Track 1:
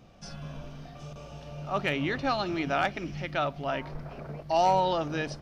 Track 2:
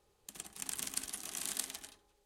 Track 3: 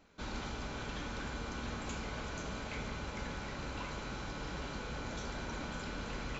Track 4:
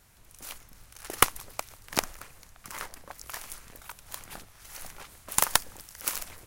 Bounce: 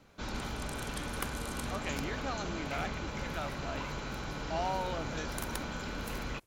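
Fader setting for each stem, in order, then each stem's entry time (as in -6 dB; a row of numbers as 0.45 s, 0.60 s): -11.0 dB, -9.0 dB, +2.5 dB, -19.0 dB; 0.00 s, 0.00 s, 0.00 s, 0.00 s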